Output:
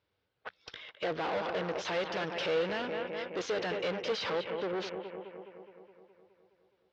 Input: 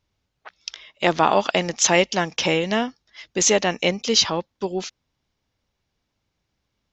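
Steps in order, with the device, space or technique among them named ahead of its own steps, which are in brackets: 1.04–1.72 high shelf 2400 Hz -10.5 dB; analogue delay pedal into a guitar amplifier (analogue delay 0.209 s, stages 4096, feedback 65%, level -14.5 dB; tube stage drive 33 dB, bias 0.65; speaker cabinet 110–4400 Hz, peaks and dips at 150 Hz -5 dB, 230 Hz -7 dB, 480 Hz +9 dB, 1500 Hz +5 dB)

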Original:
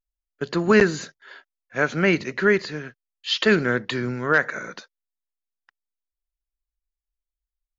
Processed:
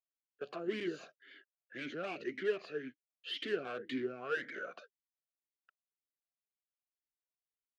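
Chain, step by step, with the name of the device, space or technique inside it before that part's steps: talk box (tube stage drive 26 dB, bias 0.2; vowel sweep a-i 1.9 Hz); gain +3 dB

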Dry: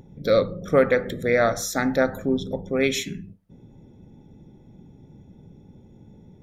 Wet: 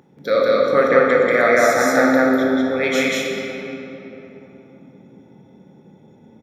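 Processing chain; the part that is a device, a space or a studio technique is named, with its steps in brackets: stadium PA (HPF 210 Hz 12 dB/oct; bell 1500 Hz +7 dB 1.6 oct; loudspeakers at several distances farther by 64 m 0 dB, 84 m -12 dB; reverb RT60 3.5 s, pre-delay 15 ms, DRR -1 dB); 0.88–1.31 Chebyshev low-pass 7900 Hz, order 5; gain -2.5 dB

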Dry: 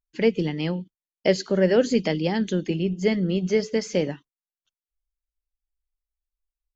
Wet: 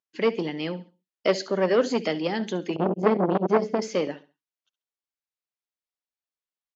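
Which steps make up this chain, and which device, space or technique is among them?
2.76–3.82 tilt -4 dB/oct; feedback echo 68 ms, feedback 29%, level -17 dB; public-address speaker with an overloaded transformer (core saturation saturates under 670 Hz; BPF 260–6200 Hz)

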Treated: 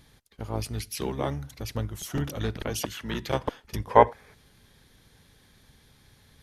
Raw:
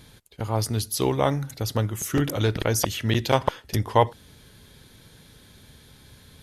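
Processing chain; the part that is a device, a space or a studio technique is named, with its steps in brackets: 2.7–3.23 HPF 120 Hz 24 dB/oct; octave pedal (harmoniser -12 st -4 dB); 3.91–4.34 spectral gain 380–2600 Hz +11 dB; gain -8.5 dB

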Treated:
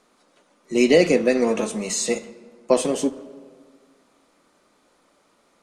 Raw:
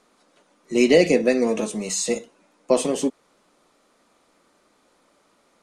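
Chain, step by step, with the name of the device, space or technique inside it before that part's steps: saturated reverb return (on a send at -13 dB: reverb RT60 1.7 s, pre-delay 14 ms + soft clip -19 dBFS, distortion -8 dB); 1.35–2.74 on the sum: dynamic EQ 1400 Hz, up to +4 dB, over -40 dBFS, Q 0.72

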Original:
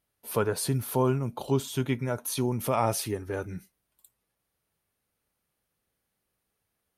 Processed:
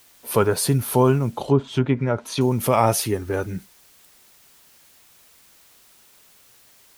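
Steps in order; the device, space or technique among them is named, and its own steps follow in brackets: plain cassette with noise reduction switched in (mismatched tape noise reduction decoder only; wow and flutter; white noise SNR 30 dB); 1.32–2.41 treble ducked by the level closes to 1400 Hz, closed at -22.5 dBFS; gain +8 dB

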